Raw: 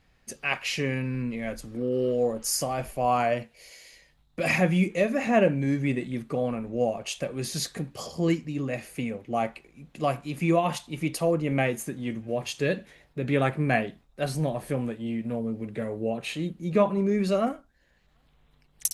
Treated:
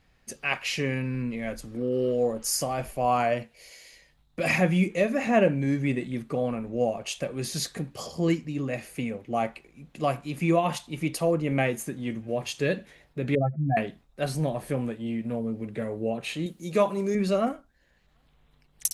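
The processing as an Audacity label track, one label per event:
13.350000	13.770000	spectral contrast raised exponent 3.8
16.460000	17.150000	tone controls bass -7 dB, treble +12 dB

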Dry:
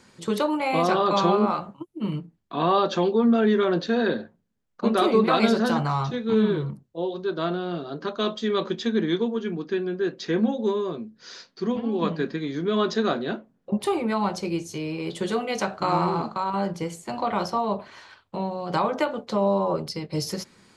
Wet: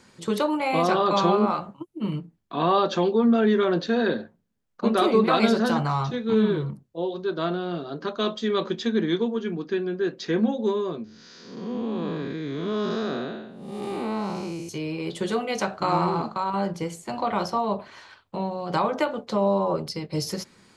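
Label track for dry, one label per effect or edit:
11.040000	14.690000	time blur width 0.29 s

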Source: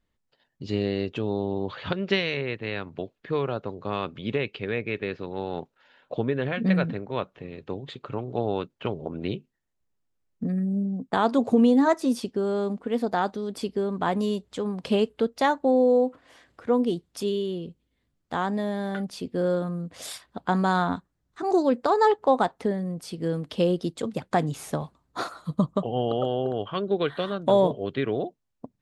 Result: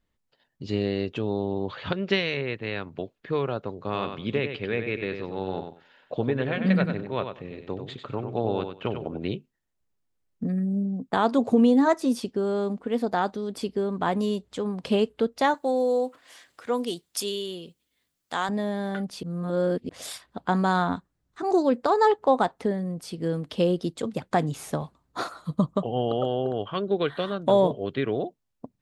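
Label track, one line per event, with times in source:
3.770000	9.190000	feedback echo 95 ms, feedback 18%, level -7.5 dB
15.540000	18.490000	tilt +3.5 dB/oct
19.230000	19.890000	reverse

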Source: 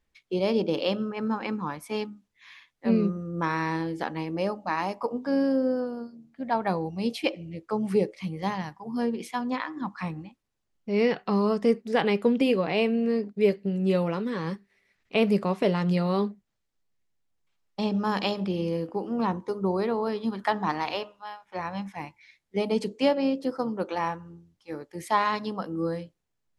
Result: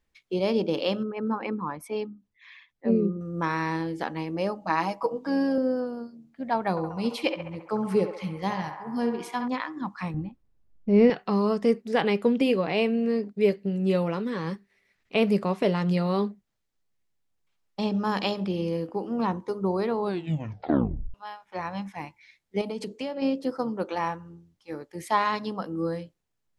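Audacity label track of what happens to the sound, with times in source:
1.030000	3.210000	formant sharpening exponent 1.5
4.610000	5.580000	comb 6.2 ms
6.700000	9.480000	narrowing echo 68 ms, feedback 81%, band-pass 1100 Hz, level -5.5 dB
10.140000	11.100000	tilt -3.5 dB/oct
19.980000	19.980000	tape stop 1.16 s
22.610000	23.220000	compressor, threshold -29 dBFS

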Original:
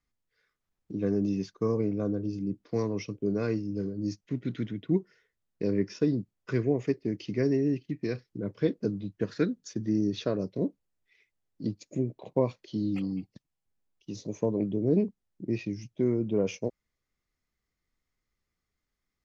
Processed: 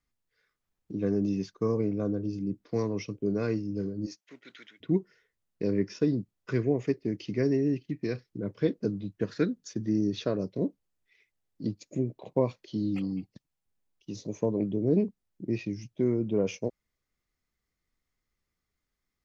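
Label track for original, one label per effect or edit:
4.050000	4.800000	HPF 530 Hz -> 1500 Hz

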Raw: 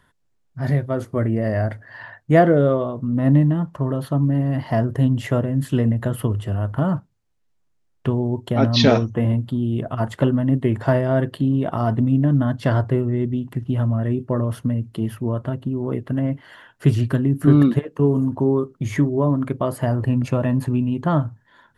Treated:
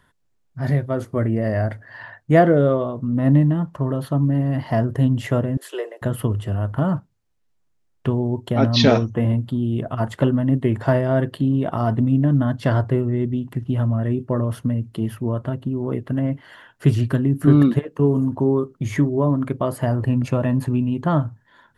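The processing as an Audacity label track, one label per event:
5.570000	6.020000	steep high-pass 360 Hz 72 dB/oct

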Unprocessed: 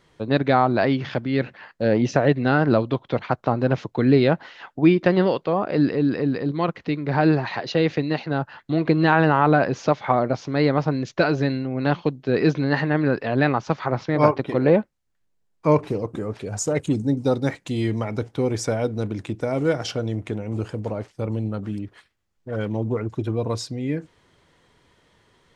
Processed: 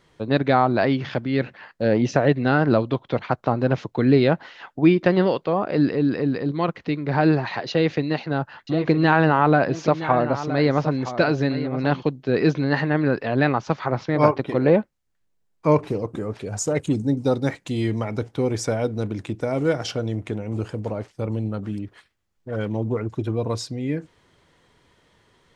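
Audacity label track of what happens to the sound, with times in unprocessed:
7.700000	12.030000	echo 0.969 s -12 dB

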